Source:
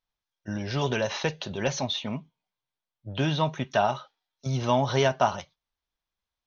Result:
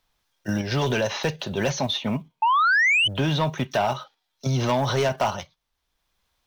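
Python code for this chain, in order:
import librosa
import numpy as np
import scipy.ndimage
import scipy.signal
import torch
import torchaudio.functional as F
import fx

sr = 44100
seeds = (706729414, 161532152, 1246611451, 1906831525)

p1 = fx.block_float(x, sr, bits=7)
p2 = fx.level_steps(p1, sr, step_db=16)
p3 = p1 + (p2 * librosa.db_to_amplitude(1.0))
p4 = fx.spec_paint(p3, sr, seeds[0], shape='rise', start_s=2.42, length_s=0.66, low_hz=860.0, high_hz=3100.0, level_db=-17.0)
p5 = fx.fold_sine(p4, sr, drive_db=5, ceiling_db=-7.0)
p6 = fx.band_squash(p5, sr, depth_pct=40)
y = p6 * librosa.db_to_amplitude(-8.5)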